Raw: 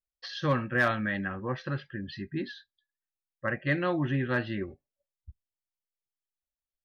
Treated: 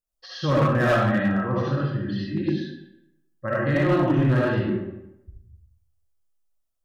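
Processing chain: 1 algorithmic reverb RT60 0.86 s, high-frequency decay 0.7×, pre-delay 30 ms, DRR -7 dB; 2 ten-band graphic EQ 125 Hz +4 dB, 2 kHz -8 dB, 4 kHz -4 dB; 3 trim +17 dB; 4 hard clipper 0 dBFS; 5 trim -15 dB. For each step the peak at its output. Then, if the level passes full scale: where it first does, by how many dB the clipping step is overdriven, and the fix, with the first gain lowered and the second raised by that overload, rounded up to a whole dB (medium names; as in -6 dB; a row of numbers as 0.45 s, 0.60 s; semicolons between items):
-6.5 dBFS, -8.0 dBFS, +9.0 dBFS, 0.0 dBFS, -15.0 dBFS; step 3, 9.0 dB; step 3 +8 dB, step 5 -6 dB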